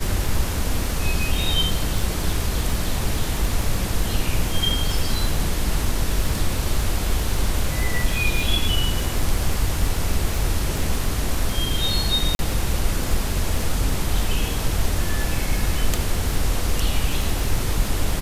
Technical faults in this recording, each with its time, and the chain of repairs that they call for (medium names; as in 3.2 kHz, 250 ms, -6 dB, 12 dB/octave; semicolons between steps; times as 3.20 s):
crackle 27 per s -23 dBFS
12.35–12.39 s: dropout 41 ms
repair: de-click; interpolate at 12.35 s, 41 ms